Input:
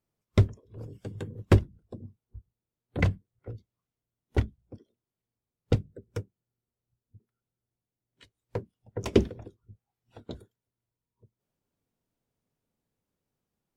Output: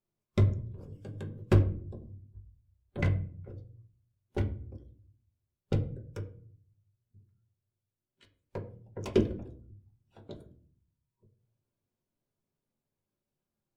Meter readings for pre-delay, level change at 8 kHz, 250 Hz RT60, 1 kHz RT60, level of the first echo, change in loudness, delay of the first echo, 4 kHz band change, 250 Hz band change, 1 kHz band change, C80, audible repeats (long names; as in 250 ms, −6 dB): 5 ms, can't be measured, 0.85 s, 0.40 s, no echo audible, −3.0 dB, no echo audible, −6.0 dB, −2.5 dB, −4.5 dB, 16.5 dB, no echo audible